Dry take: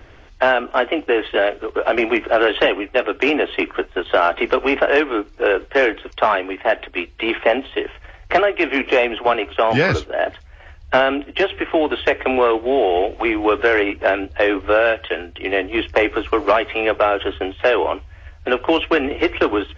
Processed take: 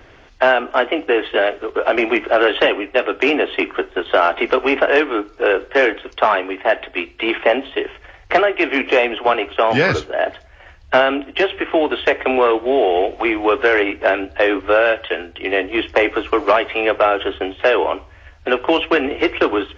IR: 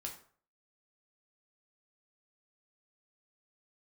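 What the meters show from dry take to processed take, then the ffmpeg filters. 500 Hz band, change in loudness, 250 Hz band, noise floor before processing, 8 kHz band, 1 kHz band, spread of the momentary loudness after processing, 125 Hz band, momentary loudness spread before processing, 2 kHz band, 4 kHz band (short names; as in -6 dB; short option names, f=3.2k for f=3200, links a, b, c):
+1.0 dB, +1.0 dB, +0.5 dB, -44 dBFS, n/a, +1.5 dB, 6 LU, -2.5 dB, 6 LU, +1.5 dB, +1.5 dB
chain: -filter_complex "[0:a]lowshelf=f=110:g=-8,asplit=2[a][b];[1:a]atrim=start_sample=2205[c];[b][c]afir=irnorm=-1:irlink=0,volume=-10dB[d];[a][d]amix=inputs=2:normalize=0"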